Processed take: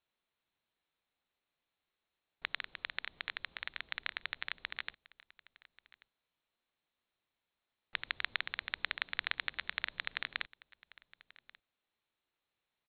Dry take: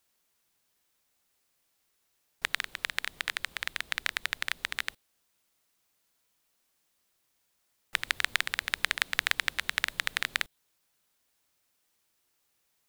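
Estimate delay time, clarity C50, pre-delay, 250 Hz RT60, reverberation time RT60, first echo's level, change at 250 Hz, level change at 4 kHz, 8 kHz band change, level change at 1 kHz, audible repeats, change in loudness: 1136 ms, no reverb, no reverb, no reverb, no reverb, -22.0 dB, -8.5 dB, -8.5 dB, under -40 dB, -8.0 dB, 1, -8.5 dB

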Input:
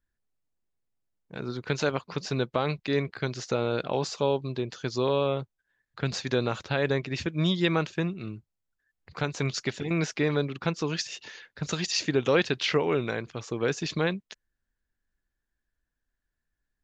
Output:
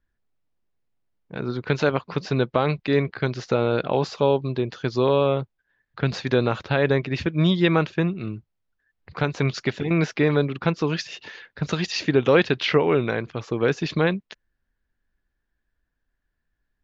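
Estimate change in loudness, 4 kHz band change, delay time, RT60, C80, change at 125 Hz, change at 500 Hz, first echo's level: +5.5 dB, +1.5 dB, no echo, no reverb, no reverb, +6.5 dB, +6.0 dB, no echo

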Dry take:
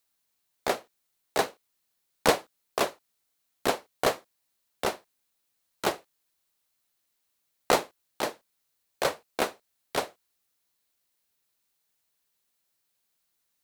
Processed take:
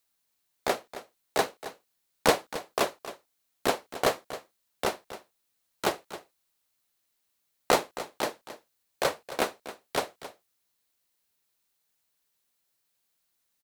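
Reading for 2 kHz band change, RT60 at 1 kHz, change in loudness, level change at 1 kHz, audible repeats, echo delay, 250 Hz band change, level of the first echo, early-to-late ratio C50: 0.0 dB, no reverb, 0.0 dB, 0.0 dB, 1, 269 ms, 0.0 dB, -14.0 dB, no reverb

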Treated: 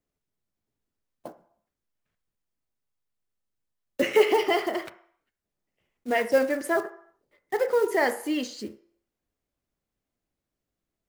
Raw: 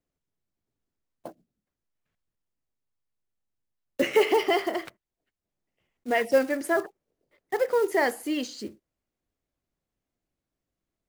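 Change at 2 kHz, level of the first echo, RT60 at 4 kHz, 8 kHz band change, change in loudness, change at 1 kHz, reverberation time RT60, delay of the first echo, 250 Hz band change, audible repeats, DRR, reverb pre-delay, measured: +0.5 dB, no echo, 0.65 s, 0.0 dB, +0.5 dB, 0.0 dB, 0.65 s, no echo, 0.0 dB, no echo, 8.5 dB, 3 ms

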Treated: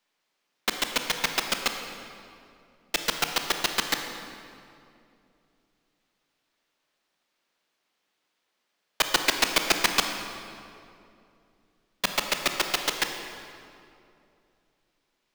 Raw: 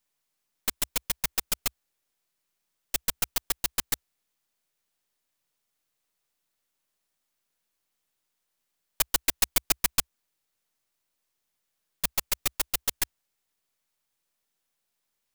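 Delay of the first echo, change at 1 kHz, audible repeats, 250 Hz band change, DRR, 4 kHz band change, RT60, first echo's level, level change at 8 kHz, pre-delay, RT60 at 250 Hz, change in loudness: no echo, +9.0 dB, no echo, +7.5 dB, 5.0 dB, +7.0 dB, 2.6 s, no echo, -1.5 dB, 23 ms, 3.2 s, +1.5 dB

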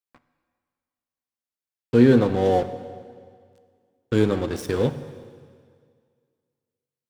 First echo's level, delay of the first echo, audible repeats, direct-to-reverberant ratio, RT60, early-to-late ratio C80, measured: no echo, no echo, no echo, 11.0 dB, 2.0 s, 13.5 dB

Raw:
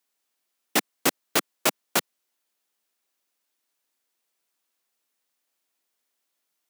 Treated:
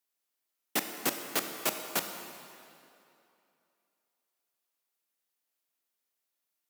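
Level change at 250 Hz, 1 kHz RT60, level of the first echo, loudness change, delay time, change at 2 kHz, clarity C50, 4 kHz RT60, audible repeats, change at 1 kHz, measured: -7.5 dB, 2.8 s, no echo, -7.0 dB, no echo, -7.5 dB, 6.5 dB, 2.2 s, no echo, -7.5 dB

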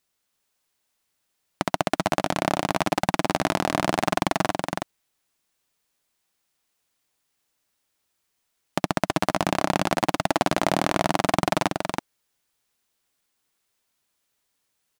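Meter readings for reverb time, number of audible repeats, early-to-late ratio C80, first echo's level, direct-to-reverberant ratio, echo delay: no reverb, 1, no reverb, -4.0 dB, no reverb, 327 ms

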